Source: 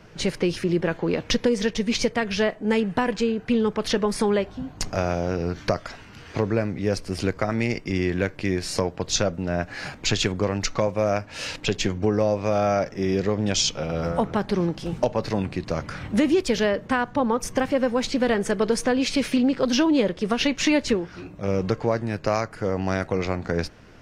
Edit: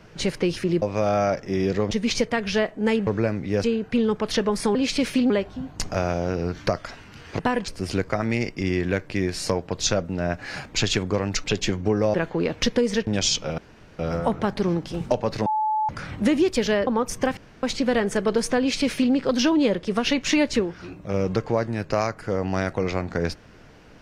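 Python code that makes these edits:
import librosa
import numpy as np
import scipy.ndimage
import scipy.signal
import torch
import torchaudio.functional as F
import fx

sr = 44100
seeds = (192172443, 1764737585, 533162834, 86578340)

y = fx.edit(x, sr, fx.swap(start_s=0.82, length_s=0.93, other_s=12.31, other_length_s=1.09),
    fx.swap(start_s=2.91, length_s=0.29, other_s=6.4, other_length_s=0.57),
    fx.cut(start_s=10.73, length_s=0.88),
    fx.insert_room_tone(at_s=13.91, length_s=0.41),
    fx.bleep(start_s=15.38, length_s=0.43, hz=863.0, db=-20.0),
    fx.cut(start_s=16.79, length_s=0.42),
    fx.room_tone_fill(start_s=17.71, length_s=0.26),
    fx.duplicate(start_s=18.93, length_s=0.55, to_s=4.31), tone=tone)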